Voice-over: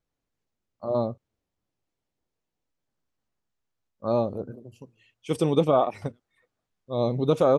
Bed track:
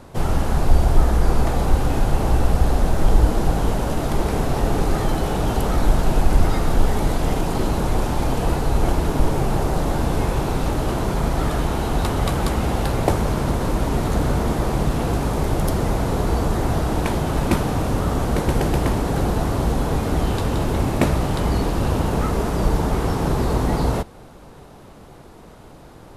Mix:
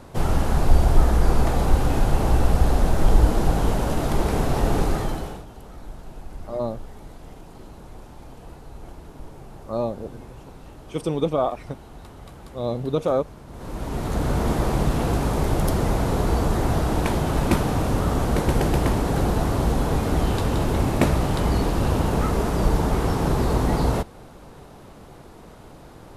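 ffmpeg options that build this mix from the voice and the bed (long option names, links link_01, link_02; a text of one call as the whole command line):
ffmpeg -i stem1.wav -i stem2.wav -filter_complex "[0:a]adelay=5650,volume=-1.5dB[link_01];[1:a]volume=19.5dB,afade=type=out:start_time=4.79:duration=0.66:silence=0.0944061,afade=type=in:start_time=13.49:duration=1.02:silence=0.0944061[link_02];[link_01][link_02]amix=inputs=2:normalize=0" out.wav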